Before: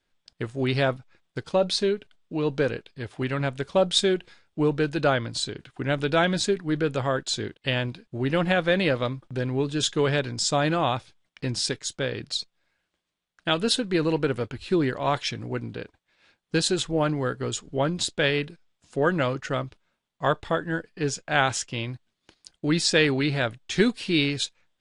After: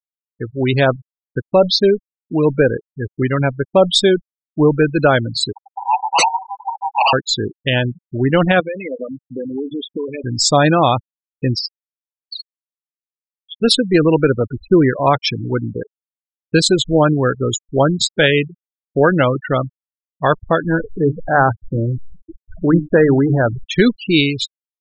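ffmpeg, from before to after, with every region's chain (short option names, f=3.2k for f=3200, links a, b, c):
-filter_complex "[0:a]asettb=1/sr,asplit=3[a][b][c];[a]atrim=end=5.524[d];[b]atrim=start=5.52:end=7.13,asetpts=PTS-STARTPTS,afade=t=in:d=0.004:c=qsin,afade=t=out:st=1.606:d=0.004:c=qsin,asuperpass=centerf=870:order=20:qfactor=3.5,aeval=exprs='0.0944*sin(PI/2*7.08*val(0)/0.0944)':c=same[e];[c]atrim=start=7.126[f];[d][e]acrossfade=d=0.004:c1=hsin:c2=qsin[g];[g][f]acrossfade=d=0.004:c1=qsin:c2=hsin,asettb=1/sr,asplit=3[h][i][j];[h]atrim=end=8.604[k];[i]atrim=start=8.6:end=10.24,asetpts=PTS-STARTPTS,afade=t=in:d=0.004:c=qsin,afade=t=out:st=1.636:d=0.004:c=qsin,bandreject=f=560:w=8.8,acompressor=threshold=-32dB:ratio=16:attack=3.2:release=140:knee=1:detection=peak,highpass=220,equalizer=f=270:t=q:w=4:g=6,equalizer=f=510:t=q:w=4:g=6,equalizer=f=910:t=q:w=4:g=6,equalizer=f=1.4k:t=q:w=4:g=-7,equalizer=f=2.2k:t=q:w=4:g=8,lowpass=f=5.9k:w=0.5412,lowpass=f=5.9k:w=1.3066[l];[j]atrim=start=10.236[m];[k][l]acrossfade=d=0.004:c1=hsin:c2=qsin[n];[n][m]acrossfade=d=0.004:c1=qsin:c2=hsin,asettb=1/sr,asplit=3[o][p][q];[o]atrim=end=11.594[r];[p]atrim=start=11.59:end=13.62,asetpts=PTS-STARTPTS,afade=t=in:d=0.004:c=qsin,afade=t=out:st=2.026:d=0.004:c=qsin,bandpass=f=4.8k:t=q:w=3.9,flanger=delay=0.6:depth=5.4:regen=57:speed=1.3:shape=sinusoidal[s];[q]atrim=start=13.616[t];[r][s]acrossfade=d=0.004:c1=hsin:c2=qsin[u];[u][t]acrossfade=d=0.004:c1=qsin:c2=hsin,asettb=1/sr,asplit=3[v][w][x];[v]atrim=end=20.644[y];[w]atrim=start=20.64:end=23.64,asetpts=PTS-STARTPTS,afade=t=in:d=0.004:c=qsin,afade=t=out:st=2.996:d=0.004:c=qsin,aeval=exprs='val(0)+0.5*0.0299*sgn(val(0))':c=same,lowpass=f=1.5k:w=0.5412,lowpass=f=1.5k:w=1.3066,bandreject=f=50:t=h:w=6,bandreject=f=100:t=h:w=6,bandreject=f=150:t=h:w=6,bandreject=f=200:t=h:w=6,bandreject=f=250:t=h:w=6,bandreject=f=300:t=h:w=6[z];[x]atrim=start=23.636[aa];[y][z]acrossfade=d=0.004:c1=hsin:c2=qsin[ab];[ab][aa]acrossfade=d=0.004:c1=qsin:c2=hsin,afftfilt=real='re*gte(hypot(re,im),0.0562)':imag='im*gte(hypot(re,im),0.0562)':win_size=1024:overlap=0.75,dynaudnorm=f=150:g=9:m=7dB,alimiter=level_in=5.5dB:limit=-1dB:release=50:level=0:latency=1,volume=-1dB"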